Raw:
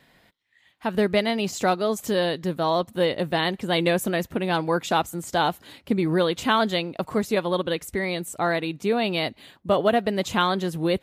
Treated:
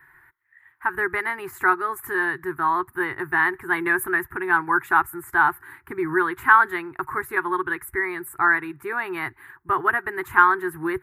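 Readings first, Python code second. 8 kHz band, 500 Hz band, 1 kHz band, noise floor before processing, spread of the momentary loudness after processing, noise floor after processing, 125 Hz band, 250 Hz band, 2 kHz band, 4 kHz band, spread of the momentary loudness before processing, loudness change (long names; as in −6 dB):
−5.0 dB, −6.5 dB, +5.0 dB, −61 dBFS, 12 LU, −58 dBFS, −12.0 dB, −5.0 dB, +10.0 dB, below −15 dB, 6 LU, +2.0 dB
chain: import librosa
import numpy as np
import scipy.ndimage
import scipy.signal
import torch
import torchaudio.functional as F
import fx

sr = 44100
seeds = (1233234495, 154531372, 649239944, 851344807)

y = fx.curve_eq(x, sr, hz=(140.0, 200.0, 370.0, 550.0, 890.0, 1700.0, 3100.0, 6000.0, 11000.0), db=(0, -24, 4, -29, 6, 14, -18, -22, 5))
y = y * librosa.db_to_amplitude(-1.0)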